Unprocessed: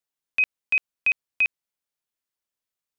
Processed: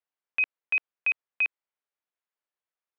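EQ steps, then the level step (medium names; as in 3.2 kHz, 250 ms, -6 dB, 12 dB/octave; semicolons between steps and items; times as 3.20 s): band-pass 410–2300 Hz; 0.0 dB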